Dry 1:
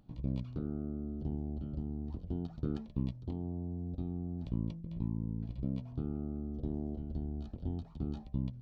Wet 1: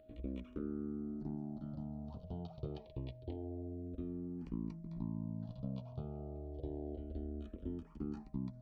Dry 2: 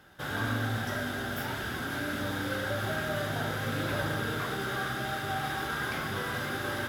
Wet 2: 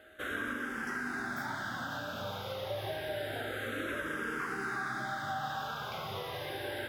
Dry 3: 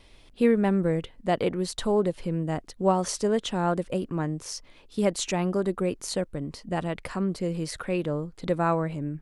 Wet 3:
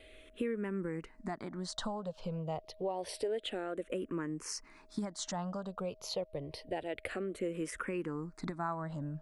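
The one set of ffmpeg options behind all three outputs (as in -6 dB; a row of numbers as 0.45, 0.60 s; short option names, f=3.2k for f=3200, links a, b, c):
-filter_complex "[0:a]alimiter=limit=-19.5dB:level=0:latency=1:release=465,bass=f=250:g=-7,treble=f=4k:g=-5,aeval=exprs='val(0)+0.001*sin(2*PI*630*n/s)':c=same,acompressor=threshold=-35dB:ratio=3,asplit=2[a][b];[b]afreqshift=-0.28[c];[a][c]amix=inputs=2:normalize=1,volume=3dB"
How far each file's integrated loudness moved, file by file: -5.0, -4.5, -11.5 LU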